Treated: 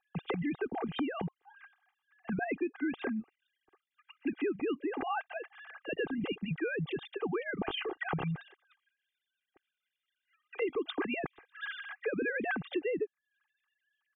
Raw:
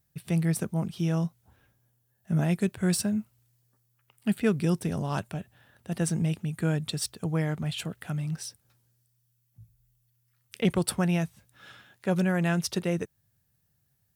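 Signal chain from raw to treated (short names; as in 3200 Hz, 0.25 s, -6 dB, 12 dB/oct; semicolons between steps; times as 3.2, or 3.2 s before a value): sine-wave speech; limiter -20.5 dBFS, peak gain reduction 11.5 dB; comb 2.5 ms, depth 70%; compressor 4:1, threshold -41 dBFS, peak gain reduction 17 dB; gain +7.5 dB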